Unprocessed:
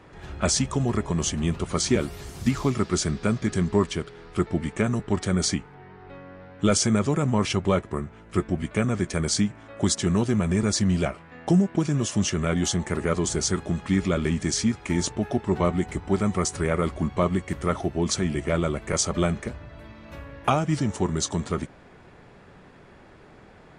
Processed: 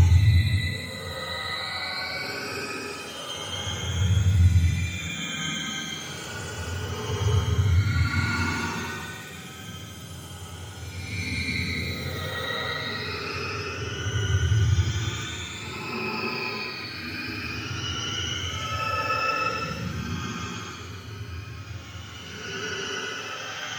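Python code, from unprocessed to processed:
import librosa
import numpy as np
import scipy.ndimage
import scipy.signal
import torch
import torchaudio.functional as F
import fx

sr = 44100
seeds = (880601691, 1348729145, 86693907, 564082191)

y = fx.octave_mirror(x, sr, pivot_hz=730.0)
y = fx.echo_swing(y, sr, ms=1159, ratio=1.5, feedback_pct=50, wet_db=-14.0)
y = fx.paulstretch(y, sr, seeds[0], factor=5.9, window_s=0.25, from_s=0.53)
y = F.gain(torch.from_numpy(y), -2.0).numpy()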